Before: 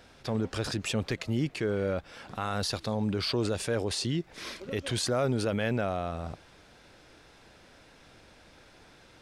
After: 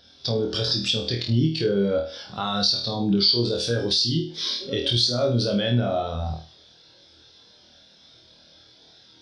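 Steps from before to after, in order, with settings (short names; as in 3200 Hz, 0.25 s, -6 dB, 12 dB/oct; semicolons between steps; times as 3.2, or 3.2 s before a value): HPF 60 Hz; band shelf 4300 Hz +12.5 dB 1.1 oct; flutter echo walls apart 4.3 m, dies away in 0.48 s; compressor 3:1, threshold -28 dBFS, peak gain reduction 10.5 dB; spectral expander 1.5:1; gain +7.5 dB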